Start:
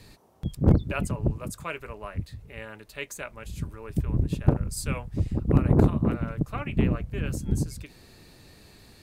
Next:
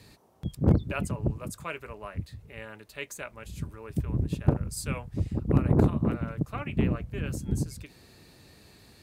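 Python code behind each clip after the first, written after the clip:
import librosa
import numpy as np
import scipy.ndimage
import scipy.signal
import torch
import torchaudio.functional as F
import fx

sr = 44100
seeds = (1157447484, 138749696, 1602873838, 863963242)

y = scipy.signal.sosfilt(scipy.signal.butter(2, 54.0, 'highpass', fs=sr, output='sos'), x)
y = y * librosa.db_to_amplitude(-2.0)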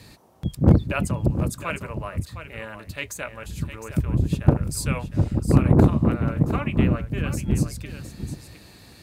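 y = fx.notch(x, sr, hz=420.0, q=12.0)
y = y + 10.0 ** (-10.5 / 20.0) * np.pad(y, (int(710 * sr / 1000.0), 0))[:len(y)]
y = y * librosa.db_to_amplitude(6.5)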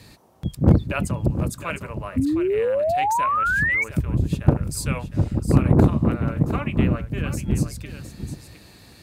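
y = fx.spec_paint(x, sr, seeds[0], shape='rise', start_s=2.16, length_s=1.68, low_hz=250.0, high_hz=2300.0, level_db=-21.0)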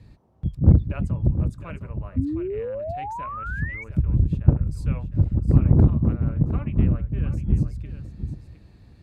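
y = fx.riaa(x, sr, side='playback')
y = y * librosa.db_to_amplitude(-11.0)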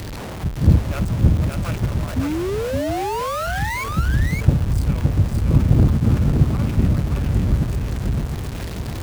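y = x + 0.5 * 10.0 ** (-25.0 / 20.0) * np.sign(x)
y = y + 10.0 ** (-3.5 / 20.0) * np.pad(y, (int(568 * sr / 1000.0), 0))[:len(y)]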